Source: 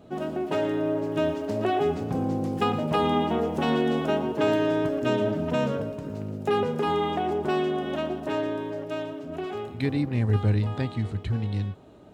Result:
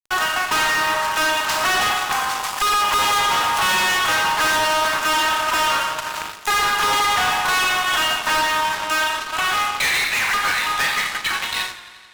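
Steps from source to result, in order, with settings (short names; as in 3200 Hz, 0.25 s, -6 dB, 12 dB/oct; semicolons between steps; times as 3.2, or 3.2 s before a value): transient shaper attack +6 dB, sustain -10 dB; steep high-pass 1000 Hz 36 dB/oct; Schroeder reverb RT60 0.76 s, combs from 30 ms, DRR 5 dB; fuzz box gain 47 dB, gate -54 dBFS; warbling echo 87 ms, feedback 75%, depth 56 cents, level -16 dB; gain -4 dB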